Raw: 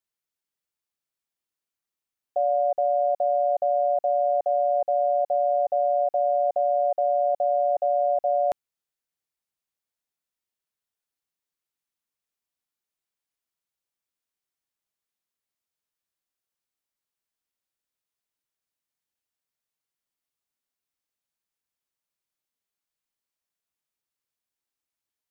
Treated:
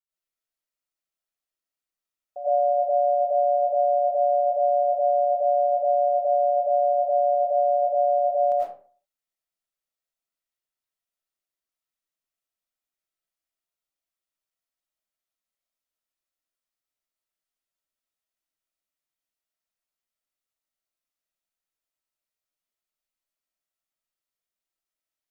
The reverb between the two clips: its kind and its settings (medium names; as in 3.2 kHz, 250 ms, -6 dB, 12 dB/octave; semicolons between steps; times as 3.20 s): algorithmic reverb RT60 0.43 s, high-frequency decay 0.65×, pre-delay 65 ms, DRR -9.5 dB; trim -11.5 dB